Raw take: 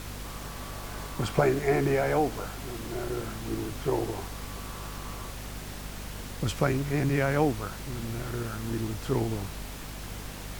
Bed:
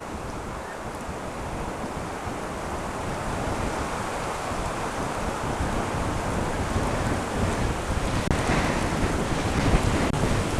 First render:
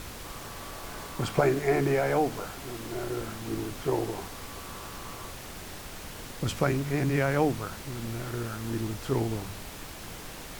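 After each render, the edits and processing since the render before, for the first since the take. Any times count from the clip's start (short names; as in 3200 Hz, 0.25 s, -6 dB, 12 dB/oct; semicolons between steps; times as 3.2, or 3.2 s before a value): de-hum 50 Hz, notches 5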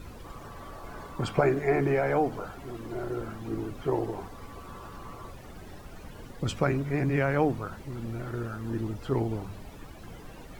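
denoiser 14 dB, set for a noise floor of -42 dBFS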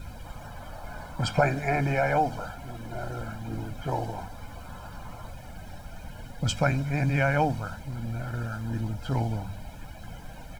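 dynamic EQ 5500 Hz, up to +6 dB, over -52 dBFS, Q 0.76; comb 1.3 ms, depth 76%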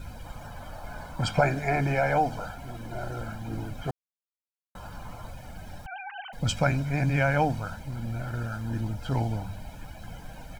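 3.91–4.75 mute; 5.86–6.33 sine-wave speech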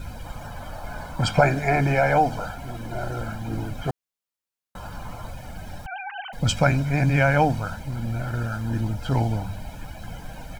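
gain +5 dB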